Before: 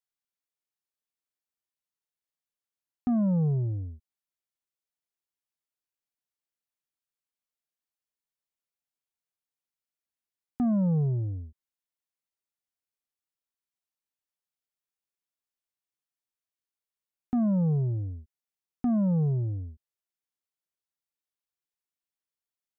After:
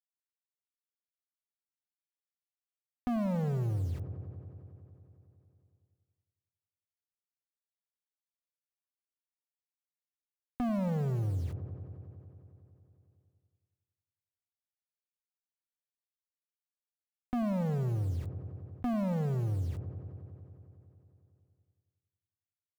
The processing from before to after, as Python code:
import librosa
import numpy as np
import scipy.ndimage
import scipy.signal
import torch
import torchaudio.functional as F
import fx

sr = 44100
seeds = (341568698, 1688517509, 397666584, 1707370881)

p1 = fx.low_shelf(x, sr, hz=88.0, db=10.5)
p2 = fx.comb_fb(p1, sr, f0_hz=530.0, decay_s=0.15, harmonics='all', damping=0.0, mix_pct=40)
p3 = 10.0 ** (-30.5 / 20.0) * (np.abs((p2 / 10.0 ** (-30.5 / 20.0) + 3.0) % 4.0 - 2.0) - 1.0)
p4 = p2 + (p3 * librosa.db_to_amplitude(-3.5))
p5 = fx.peak_eq(p4, sr, hz=160.0, db=-6.5, octaves=2.0)
p6 = fx.quant_dither(p5, sr, seeds[0], bits=10, dither='none')
p7 = p6 + fx.echo_wet_lowpass(p6, sr, ms=91, feedback_pct=68, hz=1200.0, wet_db=-13.0, dry=0)
y = fx.env_flatten(p7, sr, amount_pct=50)